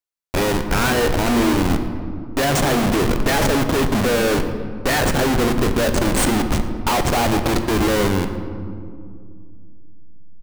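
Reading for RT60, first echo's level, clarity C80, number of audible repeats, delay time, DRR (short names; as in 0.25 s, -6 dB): 2.2 s, -18.5 dB, 9.0 dB, 1, 0.114 s, 6.5 dB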